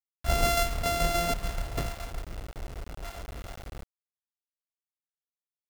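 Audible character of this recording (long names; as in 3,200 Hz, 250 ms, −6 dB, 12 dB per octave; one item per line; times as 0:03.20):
a buzz of ramps at a fixed pitch in blocks of 64 samples
tremolo saw down 7 Hz, depth 45%
a quantiser's noise floor 8 bits, dither none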